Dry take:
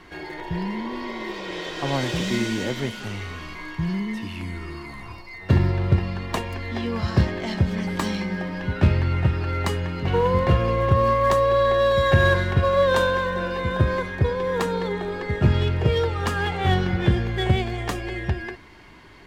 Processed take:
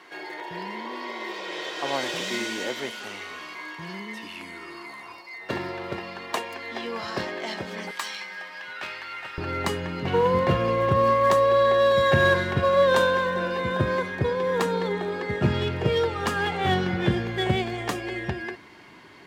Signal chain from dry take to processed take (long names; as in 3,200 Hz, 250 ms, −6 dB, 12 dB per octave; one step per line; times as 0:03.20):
high-pass filter 420 Hz 12 dB per octave, from 0:07.91 1,200 Hz, from 0:09.38 150 Hz